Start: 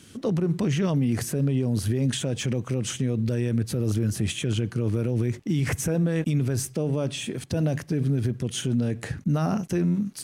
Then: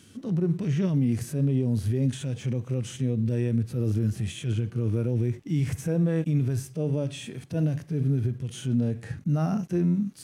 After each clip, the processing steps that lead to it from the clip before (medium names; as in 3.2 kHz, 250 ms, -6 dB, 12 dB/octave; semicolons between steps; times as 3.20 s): harmonic-percussive split percussive -15 dB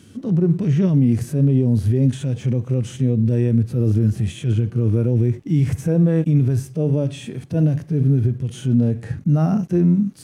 tilt shelf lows +3.5 dB; trim +5 dB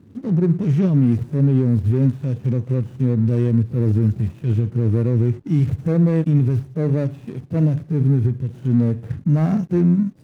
median filter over 41 samples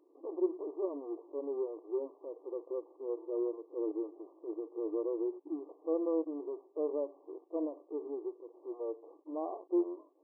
brick-wall FIR band-pass 300–1200 Hz; trim -8 dB